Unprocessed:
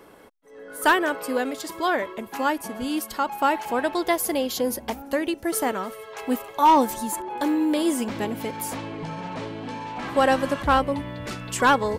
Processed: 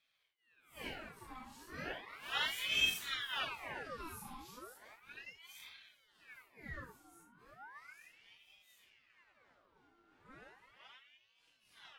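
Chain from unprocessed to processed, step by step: phase randomisation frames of 200 ms; Doppler pass-by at 2.73 s, 10 m/s, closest 1.8 m; ring modulator with a swept carrier 1.7 kHz, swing 70%, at 0.35 Hz; trim -3 dB

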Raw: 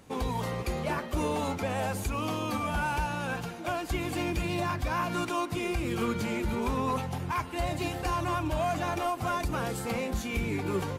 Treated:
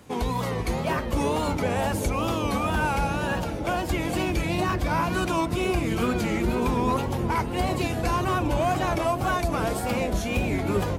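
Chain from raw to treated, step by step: bucket-brigade echo 388 ms, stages 2048, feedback 84%, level -8 dB; wow and flutter 110 cents; trim +4.5 dB

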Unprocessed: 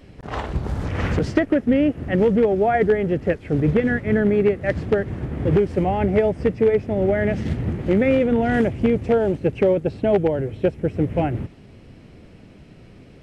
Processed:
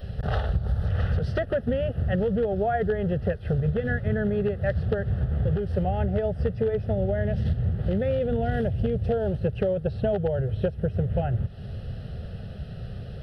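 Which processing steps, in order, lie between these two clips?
peaking EQ 75 Hz +8.5 dB 2.9 oct; static phaser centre 1.5 kHz, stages 8; 6.95–9.26 s: dynamic bell 1.3 kHz, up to -5 dB, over -38 dBFS, Q 1.1; compression 6:1, threshold -29 dBFS, peak gain reduction 16.5 dB; trim +6.5 dB

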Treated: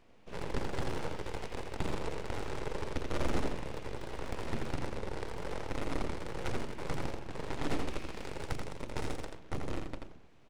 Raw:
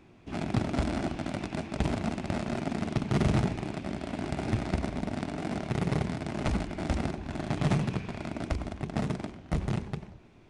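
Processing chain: 7.88–9.28 s: treble shelf 3.6 kHz +6.5 dB; full-wave rectifier; delay 84 ms -5 dB; trim -5 dB

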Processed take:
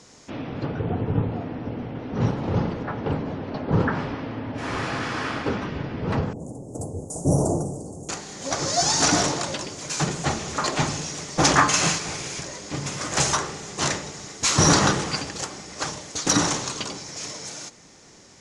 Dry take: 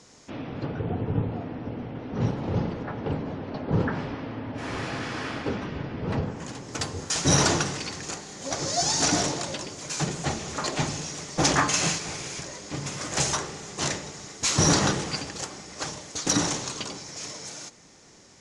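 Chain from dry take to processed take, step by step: 6.33–8.09 s: elliptic band-stop 670–8600 Hz, stop band 80 dB; dynamic bell 1.2 kHz, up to +4 dB, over -40 dBFS, Q 1.5; trim +3 dB

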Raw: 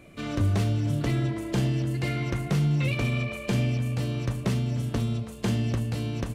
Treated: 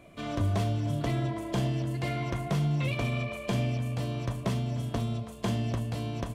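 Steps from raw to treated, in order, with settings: small resonant body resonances 680/1000/3300 Hz, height 9 dB, ringing for 25 ms; trim -4 dB

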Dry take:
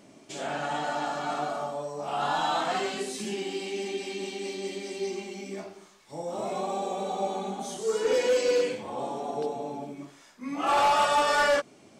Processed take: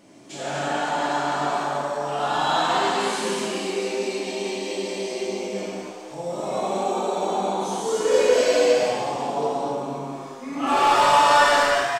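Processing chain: 3.42–4.20 s: band-stop 3.2 kHz, Q 5.9; on a send: frequency-shifting echo 242 ms, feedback 48%, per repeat +120 Hz, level -8 dB; on the sum: gated-style reverb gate 320 ms flat, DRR -5 dB

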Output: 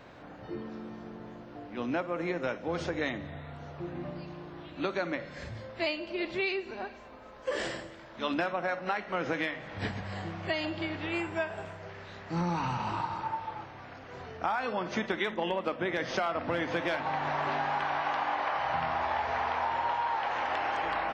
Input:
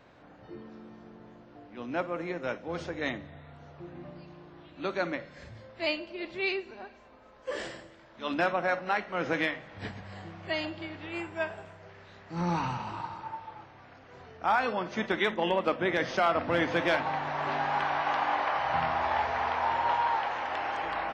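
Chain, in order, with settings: compression, threshold -34 dBFS, peak gain reduction 12.5 dB; trim +6 dB

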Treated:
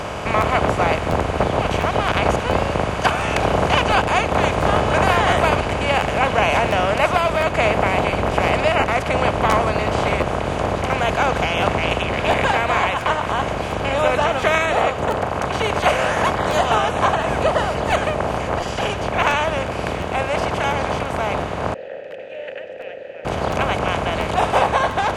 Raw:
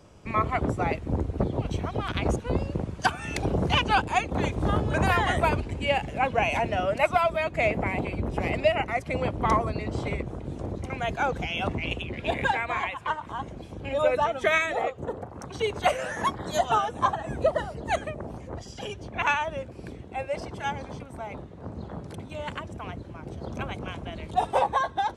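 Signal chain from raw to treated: spectral levelling over time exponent 0.4; 21.74–23.25 s: vowel filter e; crackling interface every 0.70 s, samples 512, repeat, from 0.40 s

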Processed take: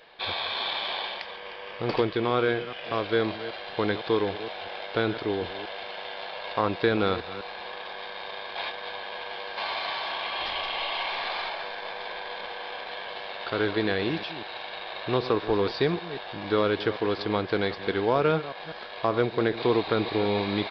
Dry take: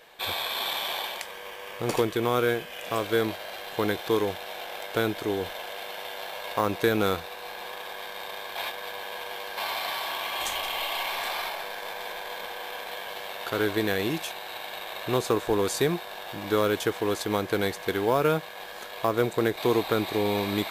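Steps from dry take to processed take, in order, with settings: chunks repeated in reverse 195 ms, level -13 dB; resampled via 11.025 kHz

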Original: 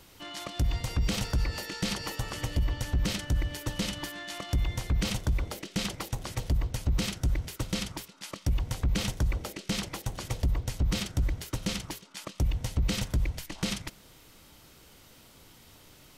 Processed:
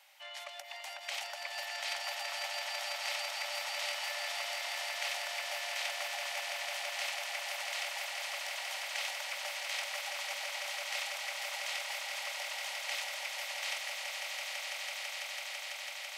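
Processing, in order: rippled Chebyshev high-pass 560 Hz, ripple 9 dB; echo with a slow build-up 166 ms, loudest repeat 8, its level -6 dB

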